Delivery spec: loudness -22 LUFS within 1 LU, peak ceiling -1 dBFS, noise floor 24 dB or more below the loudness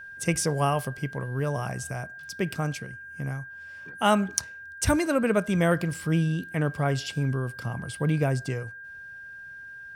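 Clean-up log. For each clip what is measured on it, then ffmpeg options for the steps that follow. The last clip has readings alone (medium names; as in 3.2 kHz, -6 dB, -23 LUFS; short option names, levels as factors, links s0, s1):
steady tone 1.6 kHz; tone level -40 dBFS; loudness -27.5 LUFS; peak level -4.5 dBFS; loudness target -22.0 LUFS
-> -af "bandreject=f=1600:w=30"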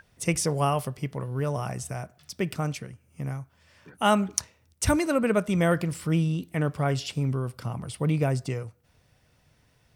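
steady tone not found; loudness -27.5 LUFS; peak level -4.5 dBFS; loudness target -22.0 LUFS
-> -af "volume=1.88,alimiter=limit=0.891:level=0:latency=1"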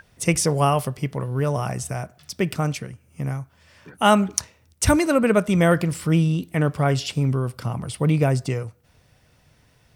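loudness -22.0 LUFS; peak level -1.0 dBFS; noise floor -59 dBFS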